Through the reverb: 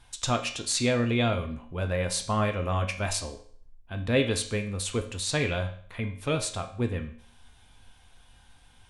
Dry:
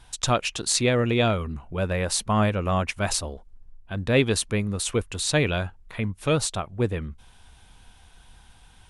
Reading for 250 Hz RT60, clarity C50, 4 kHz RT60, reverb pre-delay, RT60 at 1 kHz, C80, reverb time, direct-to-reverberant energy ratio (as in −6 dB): 0.55 s, 11.0 dB, 0.55 s, 4 ms, 0.55 s, 14.5 dB, 0.55 s, 4.0 dB